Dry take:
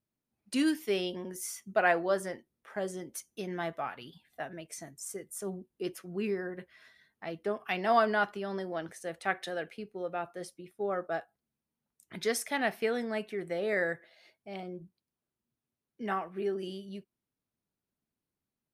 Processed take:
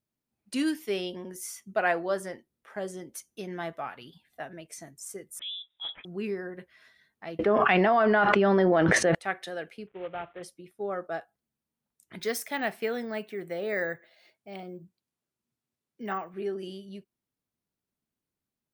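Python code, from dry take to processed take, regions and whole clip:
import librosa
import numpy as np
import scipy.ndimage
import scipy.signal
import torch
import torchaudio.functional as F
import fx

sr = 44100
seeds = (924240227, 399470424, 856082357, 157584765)

y = fx.chain(x, sr, fx.transient(attack_db=-4, sustain_db=6),
    fx.freq_invert(carrier_hz=3700), at=(5.39, 6.05))
y = fx.chain(y, sr, fx.lowpass(hz=2500.0, slope=12),
    fx.env_flatten(amount_pct=100), at=(7.39, 9.15))
y = fx.chain(y, sr, fx.cvsd(bps=16000),
    fx.highpass(hz=41.0, slope=12),
    fx.peak_eq(hz=240.0, db=-11.5, octaves=0.29), at=(9.87, 10.43))
y = fx.chain(y, sr, fx.resample_bad(factor=2, down='none', up='hold'),
    fx.highpass(hz=71.0, slope=12), at=(12.19, 16.34))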